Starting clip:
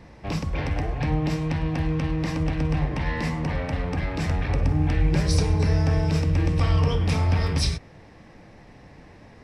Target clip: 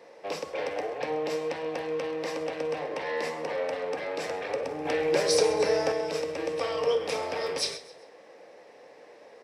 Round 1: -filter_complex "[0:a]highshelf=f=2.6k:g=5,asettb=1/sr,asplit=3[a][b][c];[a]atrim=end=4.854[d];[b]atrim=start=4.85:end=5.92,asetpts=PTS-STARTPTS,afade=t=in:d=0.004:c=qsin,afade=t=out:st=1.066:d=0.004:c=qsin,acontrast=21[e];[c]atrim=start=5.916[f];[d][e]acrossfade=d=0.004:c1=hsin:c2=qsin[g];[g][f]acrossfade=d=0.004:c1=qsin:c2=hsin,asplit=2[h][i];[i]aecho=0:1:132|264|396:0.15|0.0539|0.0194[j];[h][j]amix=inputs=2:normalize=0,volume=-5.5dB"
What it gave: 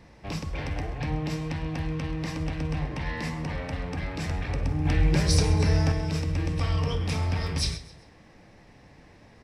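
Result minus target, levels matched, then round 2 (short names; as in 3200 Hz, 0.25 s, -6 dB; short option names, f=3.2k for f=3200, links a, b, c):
500 Hz band -11.0 dB
-filter_complex "[0:a]highpass=f=490:t=q:w=4.1,highshelf=f=2.6k:g=5,asettb=1/sr,asplit=3[a][b][c];[a]atrim=end=4.854[d];[b]atrim=start=4.85:end=5.92,asetpts=PTS-STARTPTS,afade=t=in:d=0.004:c=qsin,afade=t=out:st=1.066:d=0.004:c=qsin,acontrast=21[e];[c]atrim=start=5.916[f];[d][e]acrossfade=d=0.004:c1=hsin:c2=qsin[g];[g][f]acrossfade=d=0.004:c1=qsin:c2=hsin,asplit=2[h][i];[i]aecho=0:1:132|264|396:0.15|0.0539|0.0194[j];[h][j]amix=inputs=2:normalize=0,volume=-5.5dB"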